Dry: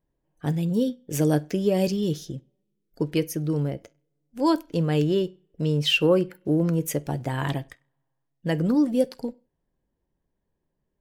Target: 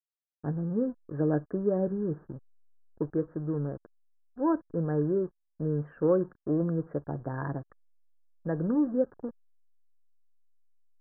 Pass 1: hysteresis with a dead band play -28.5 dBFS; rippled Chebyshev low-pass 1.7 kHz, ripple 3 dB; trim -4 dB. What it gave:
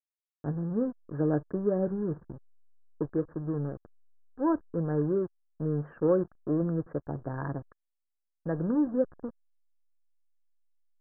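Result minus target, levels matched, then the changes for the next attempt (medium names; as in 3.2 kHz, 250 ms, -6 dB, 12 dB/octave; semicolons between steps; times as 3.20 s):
hysteresis with a dead band: distortion +6 dB
change: hysteresis with a dead band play -35 dBFS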